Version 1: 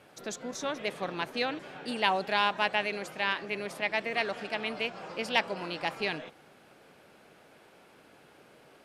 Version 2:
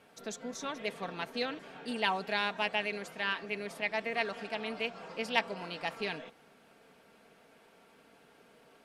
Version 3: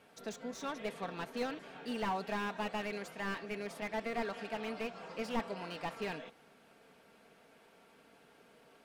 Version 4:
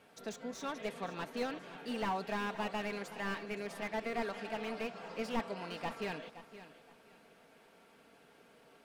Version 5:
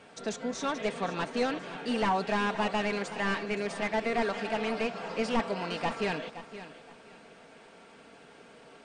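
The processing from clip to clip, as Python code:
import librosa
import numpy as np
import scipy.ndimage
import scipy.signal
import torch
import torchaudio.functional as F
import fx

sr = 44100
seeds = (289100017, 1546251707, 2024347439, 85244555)

y1 = x + 0.45 * np.pad(x, (int(4.4 * sr / 1000.0), 0))[:len(x)]
y1 = y1 * 10.0 ** (-4.5 / 20.0)
y2 = fx.slew_limit(y1, sr, full_power_hz=29.0)
y2 = y2 * 10.0 ** (-1.5 / 20.0)
y3 = fx.echo_feedback(y2, sr, ms=519, feedback_pct=24, wet_db=-14.0)
y4 = 10.0 ** (-26.5 / 20.0) * np.tanh(y3 / 10.0 ** (-26.5 / 20.0))
y4 = fx.brickwall_lowpass(y4, sr, high_hz=9700.0)
y4 = y4 * 10.0 ** (9.0 / 20.0)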